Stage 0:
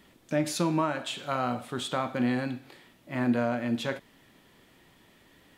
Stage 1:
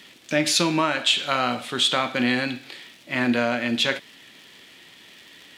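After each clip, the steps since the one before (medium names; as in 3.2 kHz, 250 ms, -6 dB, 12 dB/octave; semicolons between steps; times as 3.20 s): crackle 120 per s -49 dBFS; frequency weighting D; trim +5 dB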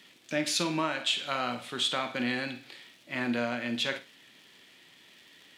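high-pass 76 Hz; flutter echo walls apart 8.6 m, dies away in 0.24 s; trim -8.5 dB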